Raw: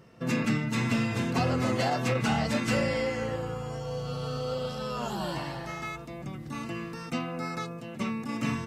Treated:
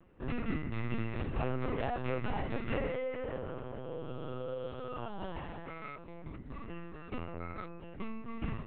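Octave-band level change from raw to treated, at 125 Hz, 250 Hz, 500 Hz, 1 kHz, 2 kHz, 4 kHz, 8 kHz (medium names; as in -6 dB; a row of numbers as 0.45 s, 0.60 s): -8.5 dB, -10.0 dB, -6.5 dB, -8.5 dB, -10.5 dB, -15.5 dB, under -35 dB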